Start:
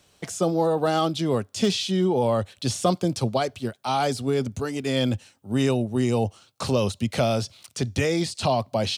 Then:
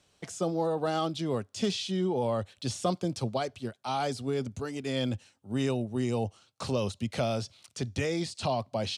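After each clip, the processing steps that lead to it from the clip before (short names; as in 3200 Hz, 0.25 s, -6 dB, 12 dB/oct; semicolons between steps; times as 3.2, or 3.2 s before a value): LPF 10000 Hz 12 dB/oct; gain -7 dB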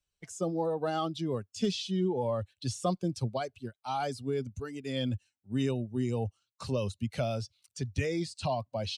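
per-bin expansion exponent 1.5; low shelf 72 Hz +11.5 dB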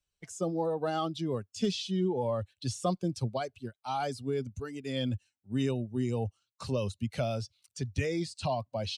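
nothing audible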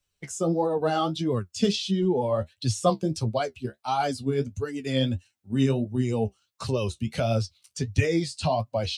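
in parallel at +3 dB: level quantiser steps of 9 dB; on the sum: flange 1.5 Hz, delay 8.4 ms, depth 7.3 ms, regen +40%; gain +5.5 dB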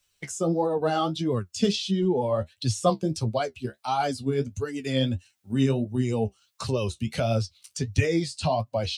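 mismatched tape noise reduction encoder only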